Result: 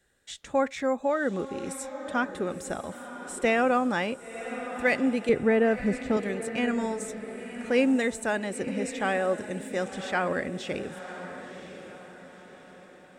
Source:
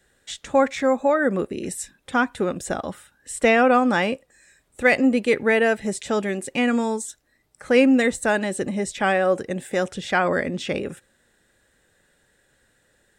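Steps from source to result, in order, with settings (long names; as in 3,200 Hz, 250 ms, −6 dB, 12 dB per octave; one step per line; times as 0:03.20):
0:05.29–0:06.17: spectral tilt −3.5 dB per octave
feedback delay with all-pass diffusion 1,019 ms, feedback 44%, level −11 dB
level −7 dB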